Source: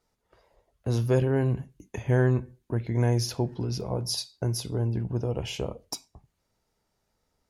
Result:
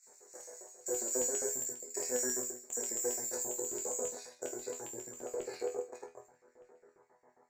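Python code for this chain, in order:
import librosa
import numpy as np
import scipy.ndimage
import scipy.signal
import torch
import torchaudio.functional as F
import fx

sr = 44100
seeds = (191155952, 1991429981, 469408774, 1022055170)

p1 = fx.bin_compress(x, sr, power=0.6)
p2 = p1 + fx.echo_single(p1, sr, ms=78, db=-4.0, dry=0)
p3 = fx.chorus_voices(p2, sr, voices=2, hz=0.3, base_ms=25, depth_ms=2.9, mix_pct=65)
p4 = fx.peak_eq(p3, sr, hz=2900.0, db=-4.5, octaves=0.73)
p5 = (np.kron(scipy.signal.resample_poly(p4, 1, 6), np.eye(6)[0]) * 6)[:len(p4)]
p6 = scipy.signal.sosfilt(scipy.signal.cheby1(2, 1.0, [2200.0, 4400.0], 'bandstop', fs=sr, output='sos'), p5)
p7 = fx.low_shelf(p6, sr, hz=160.0, db=-4.0)
p8 = fx.over_compress(p7, sr, threshold_db=-26.0, ratio=-1.0)
p9 = p7 + F.gain(torch.from_numpy(p8), -2.0).numpy()
p10 = fx.filter_lfo_highpass(p9, sr, shape='square', hz=7.4, low_hz=440.0, high_hz=2900.0, q=2.3)
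p11 = fx.resonator_bank(p10, sr, root=40, chord='fifth', decay_s=0.22)
p12 = fx.filter_sweep_lowpass(p11, sr, from_hz=7500.0, to_hz=1400.0, start_s=3.44, end_s=7.2, q=0.94)
y = F.gain(torch.from_numpy(p12), -5.0).numpy()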